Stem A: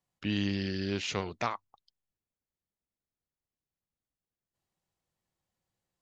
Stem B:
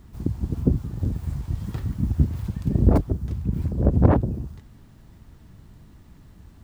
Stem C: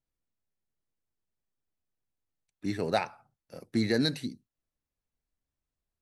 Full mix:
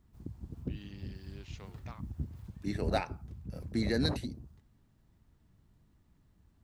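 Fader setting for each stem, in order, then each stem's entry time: -19.0 dB, -18.0 dB, -4.5 dB; 0.45 s, 0.00 s, 0.00 s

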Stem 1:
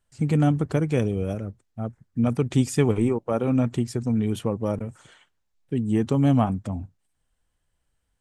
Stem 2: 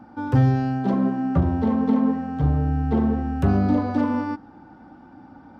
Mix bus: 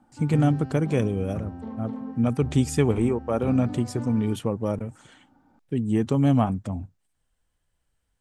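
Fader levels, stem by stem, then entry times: -0.5 dB, -15.0 dB; 0.00 s, 0.00 s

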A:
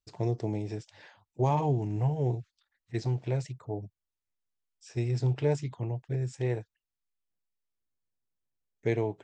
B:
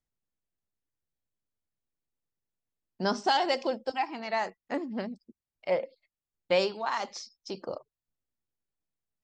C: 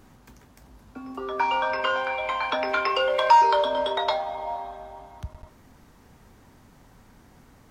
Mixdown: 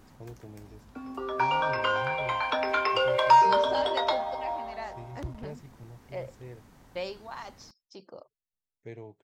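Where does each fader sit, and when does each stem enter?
-15.0 dB, -10.0 dB, -2.0 dB; 0.00 s, 0.45 s, 0.00 s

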